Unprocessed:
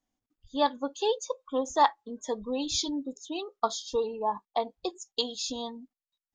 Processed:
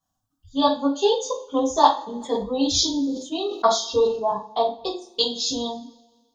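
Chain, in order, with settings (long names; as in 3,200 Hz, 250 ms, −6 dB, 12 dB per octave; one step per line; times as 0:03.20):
phaser swept by the level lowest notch 380 Hz, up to 2,100 Hz, full sweep at −31 dBFS
coupled-rooms reverb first 0.32 s, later 1.5 s, from −25 dB, DRR −8.5 dB
0:01.99–0:04.33: level that may fall only so fast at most 96 dB per second
level +1.5 dB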